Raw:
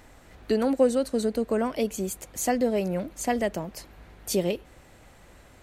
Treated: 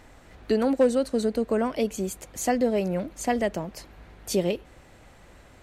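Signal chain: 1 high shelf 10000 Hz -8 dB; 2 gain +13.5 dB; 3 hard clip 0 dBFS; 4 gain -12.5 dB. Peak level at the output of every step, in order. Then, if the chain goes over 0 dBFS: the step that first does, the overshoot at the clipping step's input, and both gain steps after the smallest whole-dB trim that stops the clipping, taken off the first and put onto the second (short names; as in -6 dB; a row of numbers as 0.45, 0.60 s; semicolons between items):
-10.5, +3.0, 0.0, -12.5 dBFS; step 2, 3.0 dB; step 2 +10.5 dB, step 4 -9.5 dB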